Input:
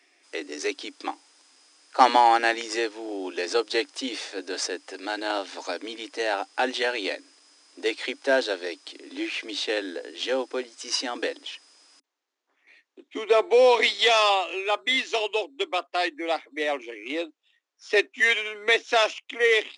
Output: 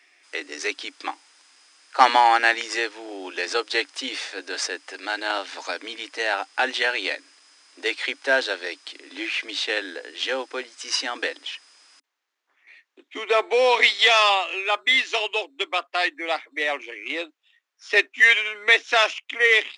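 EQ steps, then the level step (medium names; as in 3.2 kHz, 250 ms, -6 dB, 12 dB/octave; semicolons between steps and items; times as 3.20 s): peaking EQ 1.8 kHz +11.5 dB 2.7 oct; treble shelf 6 kHz +7.5 dB; -6.0 dB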